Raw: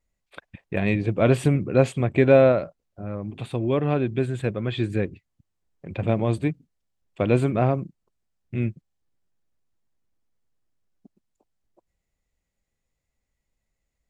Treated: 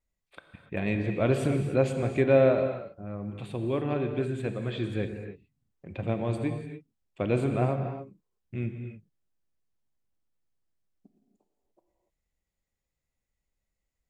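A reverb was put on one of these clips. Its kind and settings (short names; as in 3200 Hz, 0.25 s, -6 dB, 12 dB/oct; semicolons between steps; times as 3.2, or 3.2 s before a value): non-linear reverb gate 0.32 s flat, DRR 5.5 dB; gain -6.5 dB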